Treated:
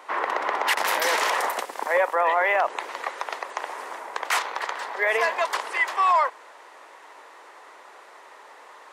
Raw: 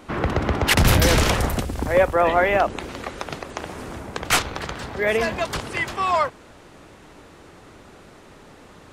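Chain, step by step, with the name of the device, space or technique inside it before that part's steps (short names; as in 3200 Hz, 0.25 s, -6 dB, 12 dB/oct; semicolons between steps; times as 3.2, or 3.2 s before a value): laptop speaker (HPF 450 Hz 24 dB/oct; bell 980 Hz +10 dB 0.59 oct; bell 1900 Hz +7 dB 0.4 oct; limiter -10 dBFS, peak gain reduction 9 dB); gain -2.5 dB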